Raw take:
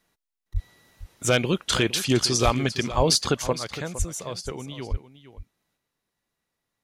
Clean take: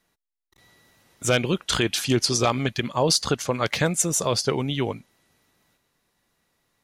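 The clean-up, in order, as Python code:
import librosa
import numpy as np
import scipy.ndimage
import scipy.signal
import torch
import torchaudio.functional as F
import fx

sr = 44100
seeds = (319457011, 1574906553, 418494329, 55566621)

y = fx.fix_deplosive(x, sr, at_s=(0.53, 2.44, 2.96, 3.98, 4.9))
y = fx.fix_echo_inverse(y, sr, delay_ms=461, level_db=-14.0)
y = fx.fix_level(y, sr, at_s=3.53, step_db=10.5)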